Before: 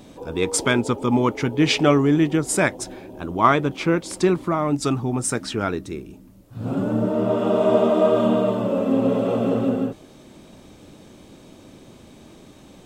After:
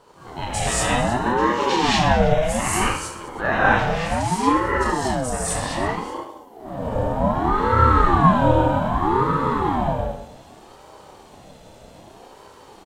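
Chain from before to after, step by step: reverse bouncing-ball echo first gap 30 ms, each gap 1.4×, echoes 5; non-linear reverb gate 0.26 s rising, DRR -8 dB; ring modulator with a swept carrier 510 Hz, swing 40%, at 0.64 Hz; gain -7 dB

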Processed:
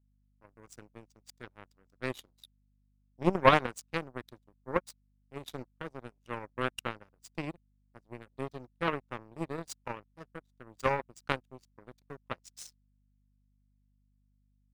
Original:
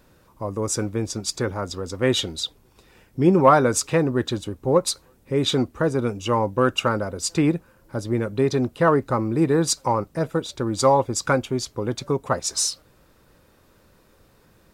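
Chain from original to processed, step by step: power-law curve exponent 3; hum 50 Hz, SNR 34 dB

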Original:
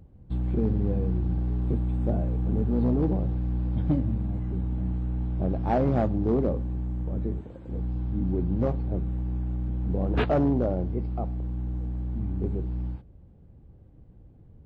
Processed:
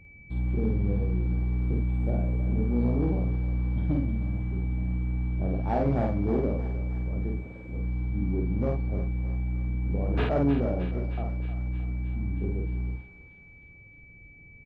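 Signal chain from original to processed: whine 2300 Hz -50 dBFS; doubler 50 ms -2.5 dB; thinning echo 0.311 s, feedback 70%, high-pass 810 Hz, level -9 dB; gain -4.5 dB

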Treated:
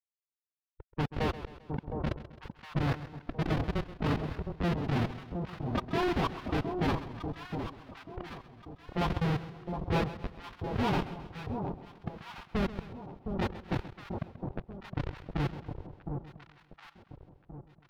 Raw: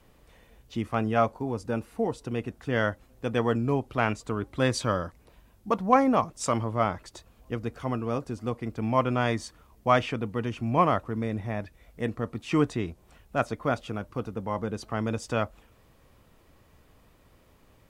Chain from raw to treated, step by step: spectral delay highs late, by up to 0.458 s; Schmitt trigger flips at -22.5 dBFS; HPF 49 Hz 6 dB/oct; high shelf 4300 Hz +12 dB; crossover distortion -44 dBFS; formant-preserving pitch shift +5 st; low-pass opened by the level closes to 960 Hz, open at -32 dBFS; air absorption 340 m; echo with dull and thin repeats by turns 0.713 s, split 960 Hz, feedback 56%, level -5.5 dB; warbling echo 0.132 s, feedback 49%, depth 61 cents, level -14 dB; gain +6.5 dB

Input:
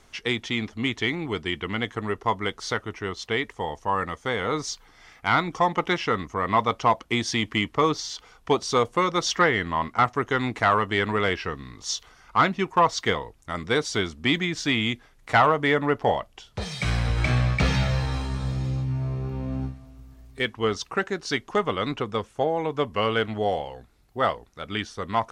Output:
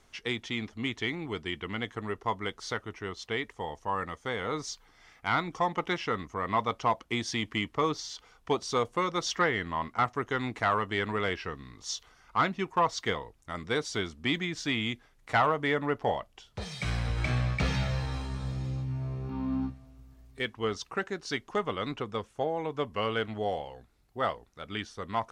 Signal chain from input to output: 19.29–19.7 graphic EQ 125/250/500/1000/4000/8000 Hz -6/+12/-10/+11/+5/-6 dB; gain -6.5 dB

